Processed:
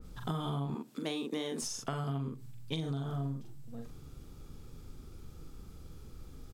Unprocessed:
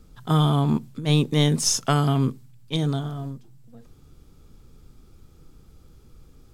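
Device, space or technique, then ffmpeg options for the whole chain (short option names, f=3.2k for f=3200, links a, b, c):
serial compression, peaks first: -filter_complex "[0:a]asettb=1/sr,asplit=3[a][b][c];[a]atrim=end=0.704[d];[b]atrim=start=0.7:end=1.62,asetpts=PTS-STARTPTS,afade=t=in:d=0.004:c=qsin,afade=t=out:st=0.916:d=0.004:c=qsin,highpass=f=240:w=0.5412,highpass=f=240:w=1.3066[e];[c]atrim=start=1.616[f];[d][e]acrossfade=d=0.004:c1=hsin:c2=qsin[g];[g][f]acrossfade=d=0.004:c1=qsin:c2=hsin,asplit=2[h][i];[i]adelay=43,volume=-3.5dB[j];[h][j]amix=inputs=2:normalize=0,acompressor=threshold=-27dB:ratio=6,acompressor=threshold=-35dB:ratio=2.5,adynamicequalizer=threshold=0.00178:dfrequency=2400:dqfactor=0.7:tfrequency=2400:tqfactor=0.7:attack=5:release=100:ratio=0.375:range=2.5:mode=cutabove:tftype=highshelf"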